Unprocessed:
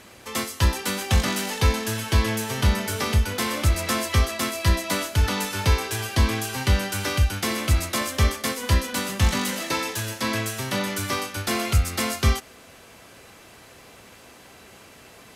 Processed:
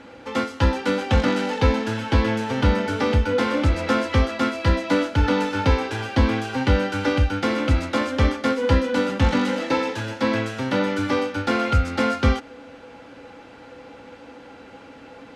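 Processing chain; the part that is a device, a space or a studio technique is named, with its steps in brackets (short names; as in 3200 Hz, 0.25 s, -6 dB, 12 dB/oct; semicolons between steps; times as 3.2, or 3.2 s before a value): inside a cardboard box (LPF 3700 Hz 12 dB/oct; small resonant body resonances 280/500/830/1400 Hz, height 16 dB, ringing for 90 ms)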